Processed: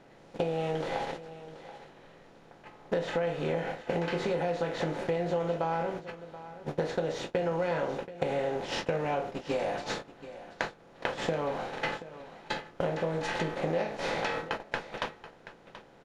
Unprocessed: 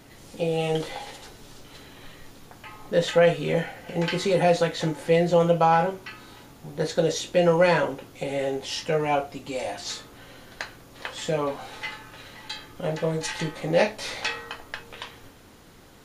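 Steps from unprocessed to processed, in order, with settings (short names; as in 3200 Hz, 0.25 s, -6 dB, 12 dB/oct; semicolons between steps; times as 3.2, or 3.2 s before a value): per-bin compression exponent 0.6; gate -27 dBFS, range -27 dB; LPF 1800 Hz 6 dB/oct; compressor 6:1, threshold -37 dBFS, peak gain reduction 21.5 dB; on a send: echo 0.73 s -15 dB; on the sum: gain +7.5 dB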